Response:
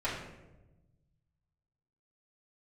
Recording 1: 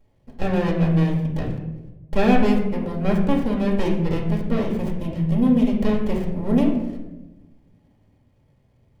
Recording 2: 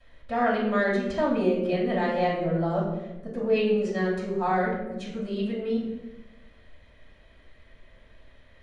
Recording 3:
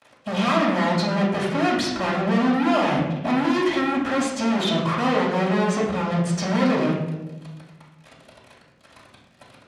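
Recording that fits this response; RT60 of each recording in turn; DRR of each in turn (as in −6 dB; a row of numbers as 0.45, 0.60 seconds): 3; 1.1, 1.0, 1.0 seconds; −3.0, −16.0, −11.5 decibels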